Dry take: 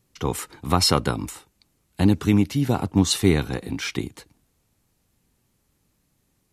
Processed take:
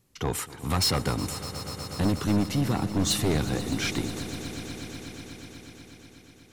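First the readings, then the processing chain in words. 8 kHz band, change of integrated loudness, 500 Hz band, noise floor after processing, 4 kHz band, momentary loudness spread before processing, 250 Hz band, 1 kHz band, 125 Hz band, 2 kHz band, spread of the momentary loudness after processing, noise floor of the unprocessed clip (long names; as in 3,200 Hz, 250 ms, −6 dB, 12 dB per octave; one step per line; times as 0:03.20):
−2.0 dB, −6.0 dB, −5.0 dB, −53 dBFS, −3.0 dB, 12 LU, −5.5 dB, −5.0 dB, −4.0 dB, −2.5 dB, 18 LU, −70 dBFS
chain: soft clipping −19.5 dBFS, distortion −7 dB
echo that builds up and dies away 122 ms, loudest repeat 5, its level −16.5 dB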